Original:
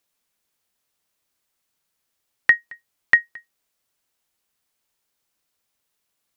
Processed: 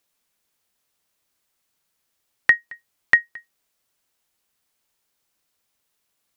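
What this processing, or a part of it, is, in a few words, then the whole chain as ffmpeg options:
parallel compression: -filter_complex "[0:a]asplit=2[s0][s1];[s1]acompressor=threshold=0.0501:ratio=6,volume=0.398[s2];[s0][s2]amix=inputs=2:normalize=0,volume=0.891"

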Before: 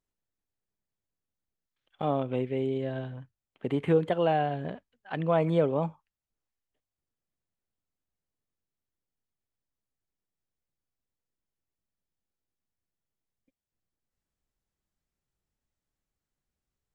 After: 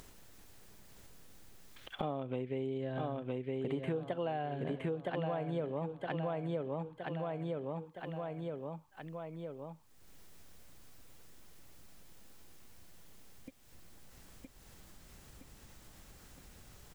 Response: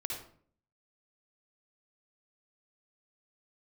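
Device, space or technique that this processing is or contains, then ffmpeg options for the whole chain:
upward and downward compression: -af "aecho=1:1:966|1932|2898|3864:0.631|0.221|0.0773|0.0271,acompressor=mode=upward:threshold=0.0282:ratio=2.5,acompressor=threshold=0.0224:ratio=8"

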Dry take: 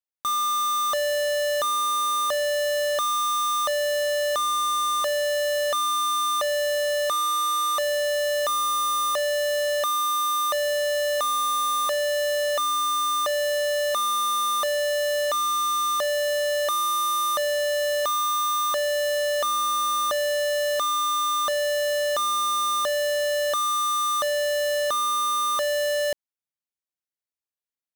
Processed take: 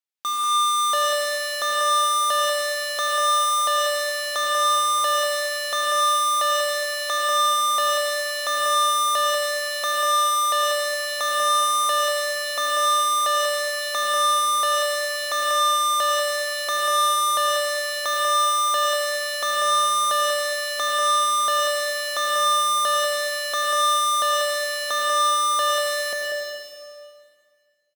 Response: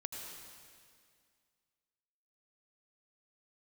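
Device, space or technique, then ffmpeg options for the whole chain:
PA in a hall: -filter_complex "[0:a]highpass=170,equalizer=f=3300:t=o:w=2.8:g=6,aecho=1:1:191:0.473[s0];[1:a]atrim=start_sample=2205[s1];[s0][s1]afir=irnorm=-1:irlink=0"

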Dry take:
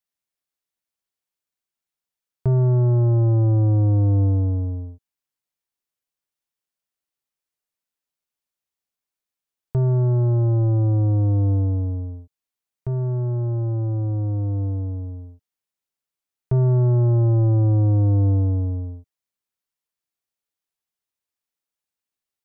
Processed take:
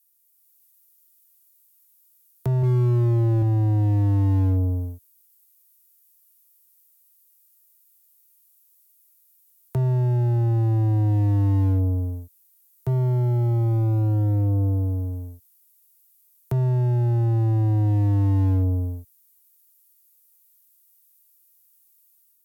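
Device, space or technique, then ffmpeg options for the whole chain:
FM broadcast chain: -filter_complex "[0:a]asettb=1/sr,asplit=3[s0][s1][s2];[s0]atrim=end=2.624[s3];[s1]atrim=start=2.62:end=3.42,asetpts=PTS-STARTPTS,afade=t=in:d=0.004:c=qsin,afade=t=out:st=0.796:d=0.004:c=qsin,highpass=f=110:p=1[s4];[s2]atrim=start=3.416[s5];[s3][s4]acrossfade=d=0.004:c1=hsin:c2=qsin[s6];[s6][s5]acrossfade=d=0.004:c1=qsin:c2=hsin,highpass=47,dynaudnorm=f=160:g=5:m=1.78,acrossover=split=130|470[s7][s8][s9];[s7]acompressor=threshold=0.126:ratio=4[s10];[s8]acompressor=threshold=0.1:ratio=4[s11];[s9]acompressor=threshold=0.02:ratio=4[s12];[s10][s11][s12]amix=inputs=3:normalize=0,aemphasis=mode=production:type=50fm,alimiter=limit=0.211:level=0:latency=1:release=13,asoftclip=type=hard:threshold=0.168,lowpass=f=15000:w=0.5412,lowpass=f=15000:w=1.3066,aemphasis=mode=production:type=50fm,volume=0.891"

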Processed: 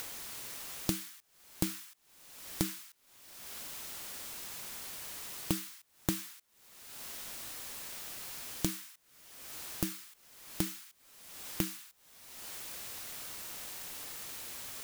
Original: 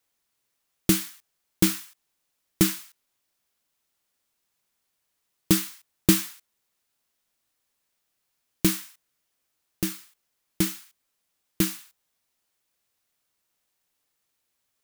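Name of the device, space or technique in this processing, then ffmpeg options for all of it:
upward and downward compression: -af "acompressor=mode=upward:threshold=0.0178:ratio=2.5,acompressor=threshold=0.00631:ratio=5,volume=3.35"

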